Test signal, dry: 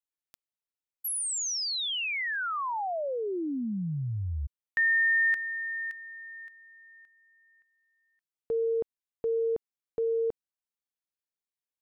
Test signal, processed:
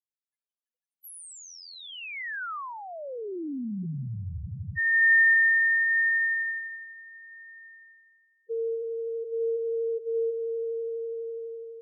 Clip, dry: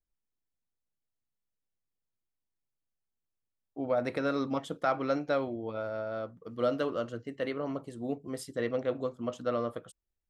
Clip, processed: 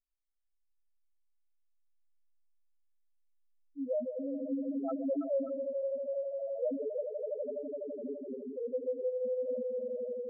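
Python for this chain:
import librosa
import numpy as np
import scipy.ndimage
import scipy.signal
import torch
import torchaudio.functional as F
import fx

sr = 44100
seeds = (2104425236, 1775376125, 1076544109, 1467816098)

y = fx.echo_swell(x, sr, ms=83, loudest=5, wet_db=-6.5)
y = fx.spec_topn(y, sr, count=2)
y = fx.rotary(y, sr, hz=0.75)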